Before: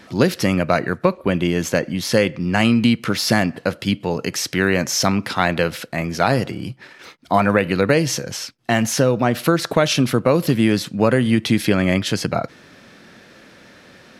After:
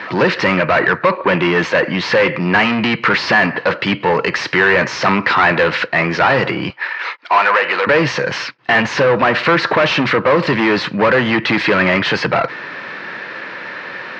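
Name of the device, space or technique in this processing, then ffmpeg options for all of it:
overdrive pedal into a guitar cabinet: -filter_complex "[0:a]asplit=2[link_01][link_02];[link_02]highpass=frequency=720:poles=1,volume=28dB,asoftclip=type=tanh:threshold=-2dB[link_03];[link_01][link_03]amix=inputs=2:normalize=0,lowpass=frequency=7300:poles=1,volume=-6dB,highpass=100,equalizer=frequency=130:width_type=q:width=4:gain=3,equalizer=frequency=240:width_type=q:width=4:gain=-6,equalizer=frequency=690:width_type=q:width=4:gain=-4,equalizer=frequency=990:width_type=q:width=4:gain=6,equalizer=frequency=1800:width_type=q:width=4:gain=4,equalizer=frequency=3400:width_type=q:width=4:gain=-7,lowpass=frequency=3700:width=0.5412,lowpass=frequency=3700:width=1.3066,asettb=1/sr,asplit=3[link_04][link_05][link_06];[link_04]atrim=end=6.704[link_07];[link_05]atrim=start=6.7:end=7.87,asetpts=PTS-STARTPTS,afade=type=in:duration=0.004:curve=qsin,afade=type=out:start_time=1.166:duration=0.004:curve=qsin,highpass=590[link_08];[link_06]atrim=start=7.866[link_09];[link_07][link_08]acrossfade=duration=0.004:curve1=hsin:curve2=qsin[link_10];[link_10][link_09]acrossfade=duration=0.004:curve1=qsin:curve2=hsin,volume=-2.5dB"

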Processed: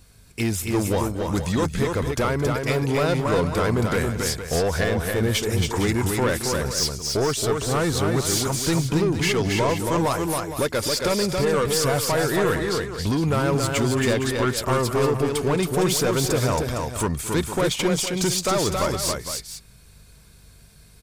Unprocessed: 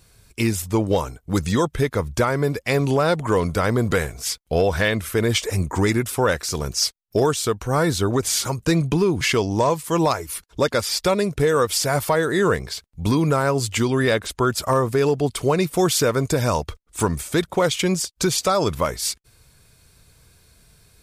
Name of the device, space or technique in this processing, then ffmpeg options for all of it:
valve amplifier with mains hum: -filter_complex "[0:a]aeval=exprs='(tanh(7.08*val(0)+0.15)-tanh(0.15))/7.08':channel_layout=same,aeval=exprs='val(0)+0.002*(sin(2*PI*50*n/s)+sin(2*PI*2*50*n/s)/2+sin(2*PI*3*50*n/s)/3+sin(2*PI*4*50*n/s)/4+sin(2*PI*5*50*n/s)/5)':channel_layout=same,asettb=1/sr,asplit=3[link_01][link_02][link_03];[link_01]atrim=end=4.844[link_04];[link_02]atrim=start=4.84:end=5.3,asetpts=PTS-STARTPTS,afade=type=in:duration=0.004:curve=qsin,afade=type=out:start_time=0.456:duration=0.004:curve=qsin,equalizer=frequency=3400:width=0.62:gain=-6.5[link_05];[link_03]atrim=start=5.296[link_06];[link_04][link_05]acrossfade=duration=0.004:curve1=hsin:curve2=qsin[link_07];[link_07][link_06]acrossfade=duration=0.004:curve1=qsin:curve2=hsin,aecho=1:1:221|274|461:0.133|0.631|0.282"

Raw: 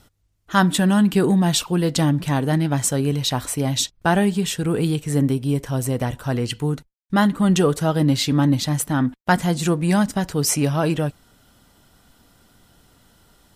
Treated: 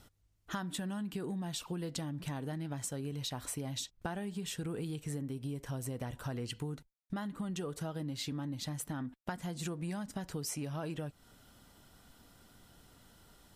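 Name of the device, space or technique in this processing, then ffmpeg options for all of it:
serial compression, leveller first: -af "acompressor=threshold=-21dB:ratio=2,acompressor=threshold=-31dB:ratio=6,volume=-5.5dB"

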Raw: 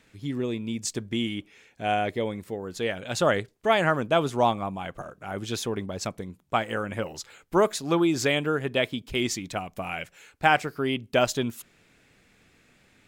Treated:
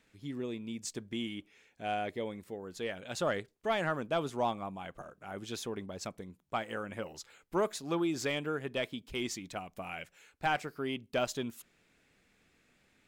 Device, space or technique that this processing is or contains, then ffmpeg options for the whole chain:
saturation between pre-emphasis and de-emphasis: -af "equalizer=frequency=110:width=2.3:gain=-4.5,highshelf=frequency=2300:gain=11,asoftclip=type=tanh:threshold=-9.5dB,highshelf=frequency=2300:gain=-11,volume=-8.5dB"

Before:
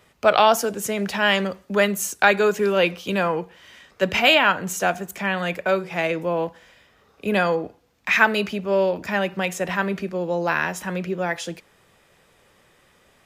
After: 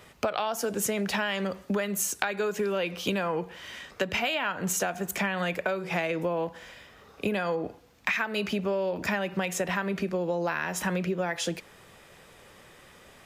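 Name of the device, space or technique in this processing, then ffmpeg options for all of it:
serial compression, leveller first: -af "acompressor=threshold=-22dB:ratio=2.5,acompressor=threshold=-30dB:ratio=10,volume=5dB"

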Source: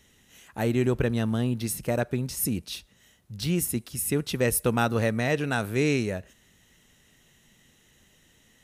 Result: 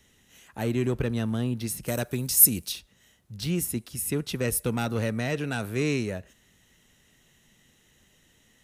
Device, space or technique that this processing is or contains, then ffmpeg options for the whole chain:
one-band saturation: -filter_complex "[0:a]acrossover=split=350|2200[link_01][link_02][link_03];[link_02]asoftclip=type=tanh:threshold=-26.5dB[link_04];[link_01][link_04][link_03]amix=inputs=3:normalize=0,asplit=3[link_05][link_06][link_07];[link_05]afade=type=out:start_time=1.86:duration=0.02[link_08];[link_06]aemphasis=mode=production:type=75kf,afade=type=in:start_time=1.86:duration=0.02,afade=type=out:start_time=2.71:duration=0.02[link_09];[link_07]afade=type=in:start_time=2.71:duration=0.02[link_10];[link_08][link_09][link_10]amix=inputs=3:normalize=0,volume=-1.5dB"

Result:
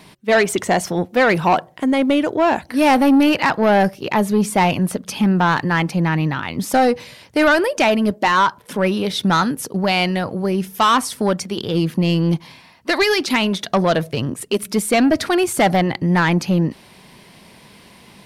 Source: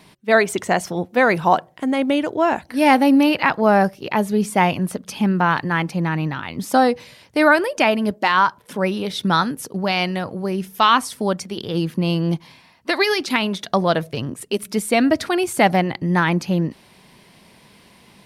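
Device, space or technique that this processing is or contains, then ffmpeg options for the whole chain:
saturation between pre-emphasis and de-emphasis: -af "highshelf=frequency=7900:gain=8,asoftclip=type=tanh:threshold=-13dB,highshelf=frequency=7900:gain=-8,volume=4.5dB"

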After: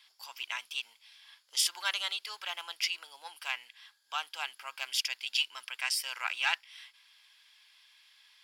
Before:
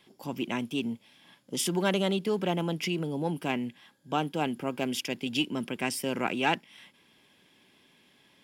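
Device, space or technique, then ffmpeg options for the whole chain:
headphones lying on a table: -af "highpass=frequency=1100:width=0.5412,highpass=frequency=1100:width=1.3066,equalizer=frequency=4600:width_type=o:width=0.57:gain=9"

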